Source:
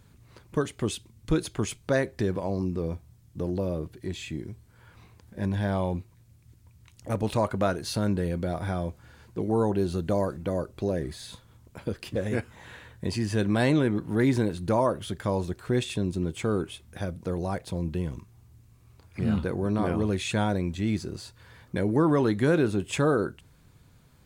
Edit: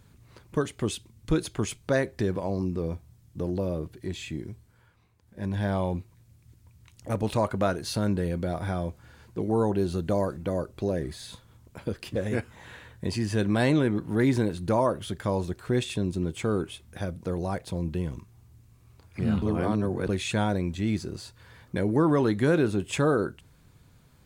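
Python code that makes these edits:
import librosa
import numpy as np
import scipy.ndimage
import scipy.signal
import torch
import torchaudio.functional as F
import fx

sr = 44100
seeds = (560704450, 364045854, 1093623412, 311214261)

y = fx.edit(x, sr, fx.fade_down_up(start_s=4.52, length_s=1.11, db=-12.5, fade_s=0.45),
    fx.reverse_span(start_s=19.42, length_s=0.67), tone=tone)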